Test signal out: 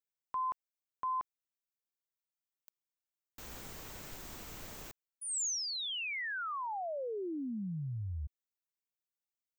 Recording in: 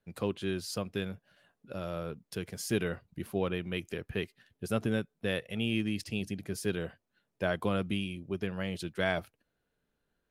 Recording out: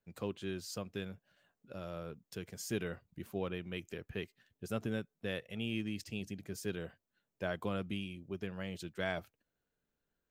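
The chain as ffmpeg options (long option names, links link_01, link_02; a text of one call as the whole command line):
ffmpeg -i in.wav -af "aexciter=amount=1.3:drive=3.7:freq=6200,volume=-6.5dB" out.wav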